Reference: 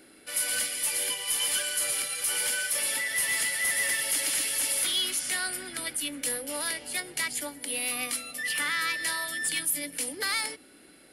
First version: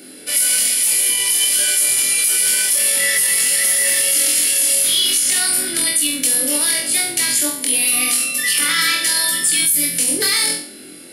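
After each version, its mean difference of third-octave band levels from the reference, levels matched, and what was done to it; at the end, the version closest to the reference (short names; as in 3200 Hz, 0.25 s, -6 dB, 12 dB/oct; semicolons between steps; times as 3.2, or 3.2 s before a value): 4.5 dB: HPF 160 Hz 12 dB/oct; bell 1100 Hz -11 dB 2.5 oct; on a send: flutter echo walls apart 4 m, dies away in 0.47 s; on the sum: maximiser +23 dB; gain -6 dB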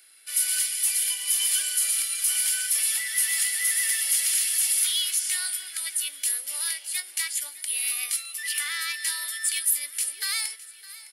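10.5 dB: Bessel high-pass 2100 Hz, order 2; high shelf 4500 Hz +6 dB; feedback echo 0.61 s, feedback 53%, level -18 dB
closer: first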